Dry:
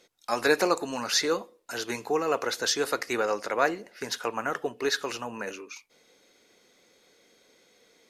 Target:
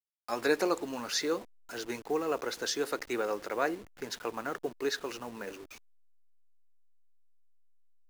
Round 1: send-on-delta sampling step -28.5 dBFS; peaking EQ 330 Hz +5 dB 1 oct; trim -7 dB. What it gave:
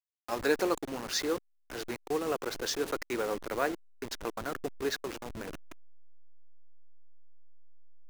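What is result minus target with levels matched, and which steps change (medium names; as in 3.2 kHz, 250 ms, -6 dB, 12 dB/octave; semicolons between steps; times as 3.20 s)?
send-on-delta sampling: distortion +11 dB
change: send-on-delta sampling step -39 dBFS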